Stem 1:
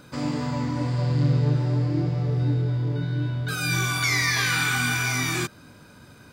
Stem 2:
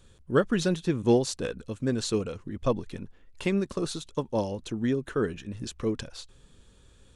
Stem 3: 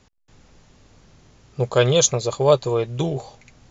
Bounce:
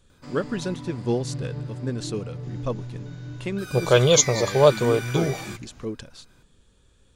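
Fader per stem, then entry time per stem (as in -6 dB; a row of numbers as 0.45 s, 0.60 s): -11.0 dB, -3.0 dB, 0.0 dB; 0.10 s, 0.00 s, 2.15 s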